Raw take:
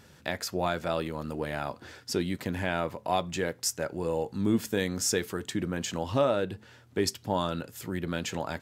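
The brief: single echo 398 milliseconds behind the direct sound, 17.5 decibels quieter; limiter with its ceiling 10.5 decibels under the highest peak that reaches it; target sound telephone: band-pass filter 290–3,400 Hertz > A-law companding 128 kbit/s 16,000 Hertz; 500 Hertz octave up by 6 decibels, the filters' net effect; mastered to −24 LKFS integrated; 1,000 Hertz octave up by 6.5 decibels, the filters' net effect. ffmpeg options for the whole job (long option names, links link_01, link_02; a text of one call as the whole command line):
ffmpeg -i in.wav -af "equalizer=frequency=500:width_type=o:gain=6,equalizer=frequency=1000:width_type=o:gain=6.5,alimiter=limit=-18dB:level=0:latency=1,highpass=290,lowpass=3400,aecho=1:1:398:0.133,volume=8dB" -ar 16000 -c:a pcm_alaw out.wav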